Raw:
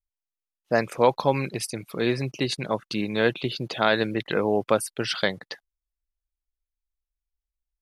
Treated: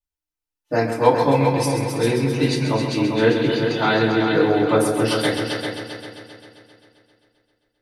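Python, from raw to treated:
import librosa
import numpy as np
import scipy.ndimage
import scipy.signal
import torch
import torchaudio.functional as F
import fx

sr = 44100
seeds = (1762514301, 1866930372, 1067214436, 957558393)

y = fx.echo_heads(x, sr, ms=132, heads='all three', feedback_pct=50, wet_db=-9.0)
y = fx.rev_fdn(y, sr, rt60_s=0.32, lf_ratio=1.45, hf_ratio=0.75, size_ms=20.0, drr_db=-7.0)
y = y * 10.0 ** (-5.0 / 20.0)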